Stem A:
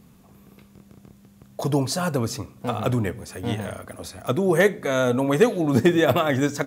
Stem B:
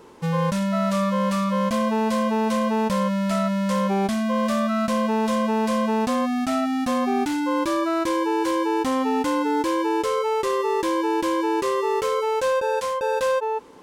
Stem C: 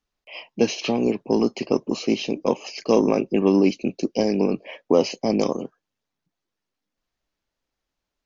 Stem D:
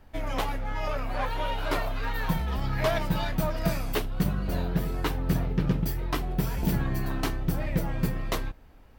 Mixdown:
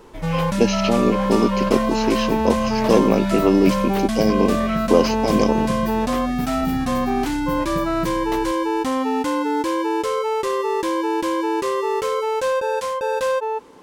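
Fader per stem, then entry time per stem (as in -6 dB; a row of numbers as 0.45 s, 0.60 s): -19.5 dB, +1.0 dB, +2.0 dB, -2.5 dB; 0.00 s, 0.00 s, 0.00 s, 0.00 s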